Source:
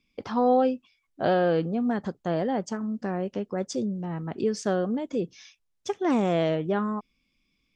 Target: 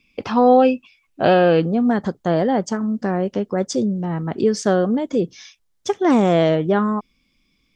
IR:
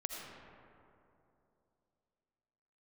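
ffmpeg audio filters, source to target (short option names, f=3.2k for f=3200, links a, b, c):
-af "asetnsamples=n=441:p=0,asendcmd='1.6 equalizer g -5',equalizer=f=2.6k:t=o:w=0.21:g=11.5,volume=8.5dB"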